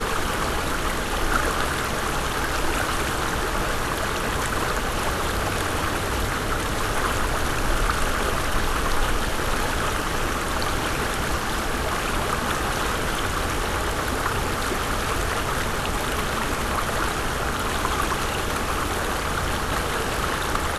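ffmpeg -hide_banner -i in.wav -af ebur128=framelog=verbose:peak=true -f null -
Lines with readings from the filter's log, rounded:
Integrated loudness:
  I:         -24.5 LUFS
  Threshold: -34.5 LUFS
Loudness range:
  LRA:         0.5 LU
  Threshold: -44.5 LUFS
  LRA low:   -24.7 LUFS
  LRA high:  -24.2 LUFS
True peak:
  Peak:       -8.2 dBFS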